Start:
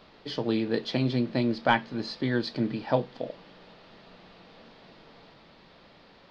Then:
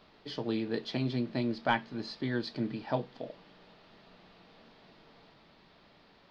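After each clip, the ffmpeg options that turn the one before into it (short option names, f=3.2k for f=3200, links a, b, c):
-af "bandreject=f=520:w=12,volume=-5.5dB"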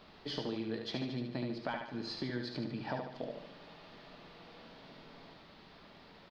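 -af "acompressor=threshold=-38dB:ratio=8,aecho=1:1:73|146|219|292|365|438:0.562|0.276|0.135|0.0662|0.0324|0.0159,volume=2.5dB"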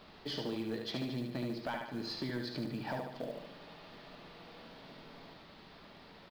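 -af "asoftclip=type=tanh:threshold=-30dB,acrusher=bits=7:mode=log:mix=0:aa=0.000001,volume=1.5dB"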